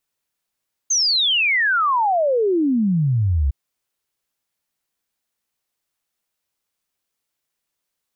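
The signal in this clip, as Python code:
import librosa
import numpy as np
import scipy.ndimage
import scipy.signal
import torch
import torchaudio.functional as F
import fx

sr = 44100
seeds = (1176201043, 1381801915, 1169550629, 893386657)

y = fx.ess(sr, length_s=2.61, from_hz=6500.0, to_hz=64.0, level_db=-15.0)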